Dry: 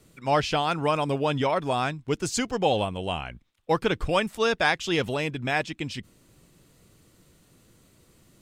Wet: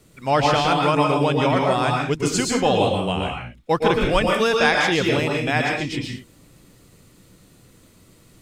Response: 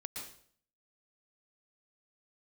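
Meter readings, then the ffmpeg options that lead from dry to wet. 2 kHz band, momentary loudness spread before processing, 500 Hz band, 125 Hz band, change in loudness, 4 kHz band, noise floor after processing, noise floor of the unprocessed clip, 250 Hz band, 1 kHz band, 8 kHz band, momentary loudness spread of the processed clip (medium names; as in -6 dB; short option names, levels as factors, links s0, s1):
+6.5 dB, 9 LU, +6.0 dB, +7.0 dB, +6.0 dB, +6.0 dB, -53 dBFS, -61 dBFS, +7.5 dB, +6.0 dB, +6.0 dB, 8 LU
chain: -filter_complex "[1:a]atrim=start_sample=2205,afade=t=out:st=0.29:d=0.01,atrim=end_sample=13230[s0];[0:a][s0]afir=irnorm=-1:irlink=0,volume=2.51"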